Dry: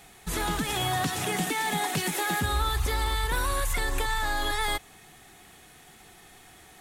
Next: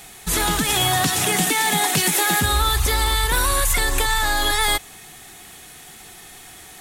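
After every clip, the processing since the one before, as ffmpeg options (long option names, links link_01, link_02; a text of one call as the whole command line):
ffmpeg -i in.wav -af "highshelf=frequency=3100:gain=7.5,volume=6.5dB" out.wav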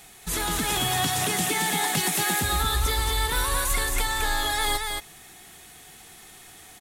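ffmpeg -i in.wav -af "aecho=1:1:223:0.631,volume=-7dB" out.wav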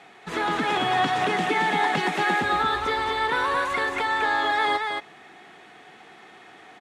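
ffmpeg -i in.wav -af "highpass=260,lowpass=2100,volume=6dB" out.wav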